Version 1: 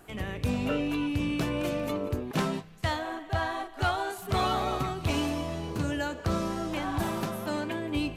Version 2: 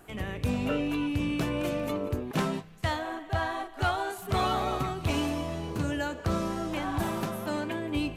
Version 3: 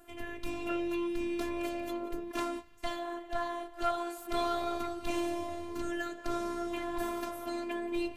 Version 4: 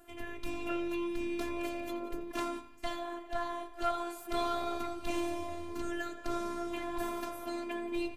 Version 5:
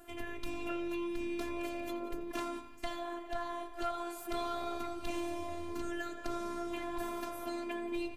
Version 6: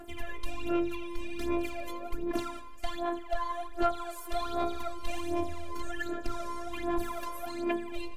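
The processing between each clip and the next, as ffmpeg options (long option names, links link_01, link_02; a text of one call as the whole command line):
ffmpeg -i in.wav -af "equalizer=frequency=4700:width=1.5:gain=-2" out.wav
ffmpeg -i in.wav -af "afftfilt=real='hypot(re,im)*cos(PI*b)':imag='0':win_size=512:overlap=0.75,volume=-1.5dB" out.wav
ffmpeg -i in.wav -filter_complex "[0:a]asplit=2[link_01][link_02];[link_02]adelay=85,lowpass=frequency=4900:poles=1,volume=-13.5dB,asplit=2[link_03][link_04];[link_04]adelay=85,lowpass=frequency=4900:poles=1,volume=0.53,asplit=2[link_05][link_06];[link_06]adelay=85,lowpass=frequency=4900:poles=1,volume=0.53,asplit=2[link_07][link_08];[link_08]adelay=85,lowpass=frequency=4900:poles=1,volume=0.53,asplit=2[link_09][link_10];[link_10]adelay=85,lowpass=frequency=4900:poles=1,volume=0.53[link_11];[link_01][link_03][link_05][link_07][link_09][link_11]amix=inputs=6:normalize=0,volume=-1dB" out.wav
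ffmpeg -i in.wav -af "acompressor=threshold=-40dB:ratio=2,volume=3dB" out.wav
ffmpeg -i in.wav -af "aphaser=in_gain=1:out_gain=1:delay=2:decay=0.71:speed=1.3:type=sinusoidal" out.wav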